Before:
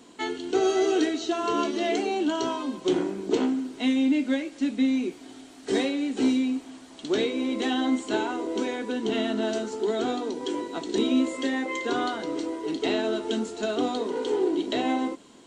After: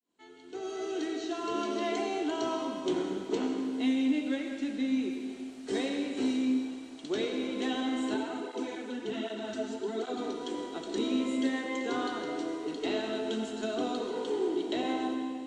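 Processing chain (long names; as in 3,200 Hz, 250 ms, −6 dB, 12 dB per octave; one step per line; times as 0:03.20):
fade in at the beginning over 1.69 s
comb and all-pass reverb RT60 2.1 s, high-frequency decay 0.9×, pre-delay 45 ms, DRR 3 dB
0:08.14–0:10.18: through-zero flanger with one copy inverted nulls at 1.3 Hz, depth 6.7 ms
level −7 dB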